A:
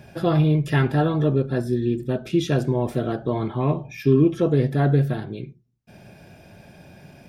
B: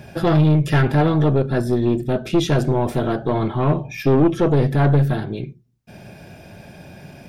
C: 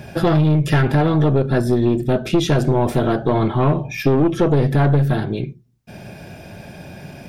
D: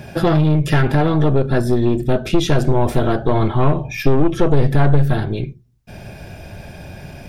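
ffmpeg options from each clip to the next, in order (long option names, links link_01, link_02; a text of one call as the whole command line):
ffmpeg -i in.wav -af "aeval=exprs='(tanh(7.08*val(0)+0.35)-tanh(0.35))/7.08':channel_layout=same,volume=7dB" out.wav
ffmpeg -i in.wav -af "acompressor=threshold=-16dB:ratio=4,volume=4dB" out.wav
ffmpeg -i in.wav -af "asubboost=boost=4:cutoff=84,volume=1dB" out.wav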